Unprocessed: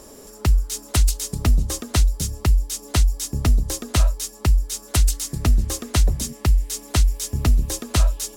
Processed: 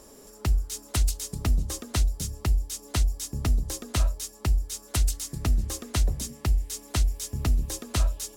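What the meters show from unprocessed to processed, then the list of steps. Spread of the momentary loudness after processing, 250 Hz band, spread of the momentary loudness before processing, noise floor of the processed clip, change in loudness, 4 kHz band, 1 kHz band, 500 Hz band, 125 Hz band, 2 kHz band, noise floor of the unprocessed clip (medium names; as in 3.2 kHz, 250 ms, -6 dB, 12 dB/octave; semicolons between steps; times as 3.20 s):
3 LU, -7.0 dB, 3 LU, -50 dBFS, -6.5 dB, -6.5 dB, -6.5 dB, -7.0 dB, -6.5 dB, -6.5 dB, -44 dBFS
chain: de-hum 76.56 Hz, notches 10; trim -6.5 dB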